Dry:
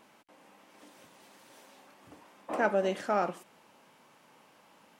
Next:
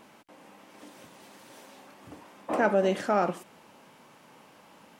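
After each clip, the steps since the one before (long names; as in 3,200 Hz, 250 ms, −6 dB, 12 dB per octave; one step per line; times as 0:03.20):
low-shelf EQ 370 Hz +4.5 dB
in parallel at −3 dB: brickwall limiter −24 dBFS, peak gain reduction 11 dB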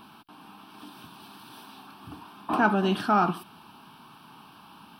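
phaser with its sweep stopped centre 2,000 Hz, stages 6
level +7.5 dB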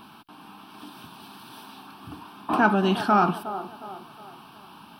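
delay with a band-pass on its return 362 ms, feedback 43%, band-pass 560 Hz, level −10.5 dB
level +2.5 dB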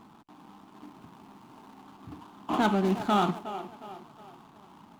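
running median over 25 samples
level −3 dB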